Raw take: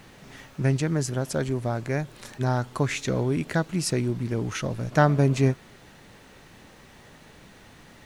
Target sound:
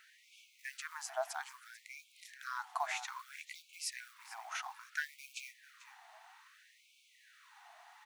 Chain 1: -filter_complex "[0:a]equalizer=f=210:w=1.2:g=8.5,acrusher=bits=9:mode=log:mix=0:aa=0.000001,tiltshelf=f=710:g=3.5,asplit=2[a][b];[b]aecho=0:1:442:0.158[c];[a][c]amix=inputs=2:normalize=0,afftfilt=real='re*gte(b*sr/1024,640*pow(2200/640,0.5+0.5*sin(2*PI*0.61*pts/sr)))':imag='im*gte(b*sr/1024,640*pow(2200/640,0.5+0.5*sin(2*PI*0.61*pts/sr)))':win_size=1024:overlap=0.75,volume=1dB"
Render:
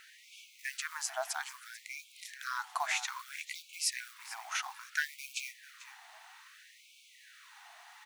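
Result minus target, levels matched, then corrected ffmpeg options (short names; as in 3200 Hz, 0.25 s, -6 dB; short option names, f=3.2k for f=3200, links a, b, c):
1000 Hz band -3.0 dB
-filter_complex "[0:a]equalizer=f=210:w=1.2:g=8.5,acrusher=bits=9:mode=log:mix=0:aa=0.000001,tiltshelf=f=710:g=12,asplit=2[a][b];[b]aecho=0:1:442:0.158[c];[a][c]amix=inputs=2:normalize=0,afftfilt=real='re*gte(b*sr/1024,640*pow(2200/640,0.5+0.5*sin(2*PI*0.61*pts/sr)))':imag='im*gte(b*sr/1024,640*pow(2200/640,0.5+0.5*sin(2*PI*0.61*pts/sr)))':win_size=1024:overlap=0.75,volume=1dB"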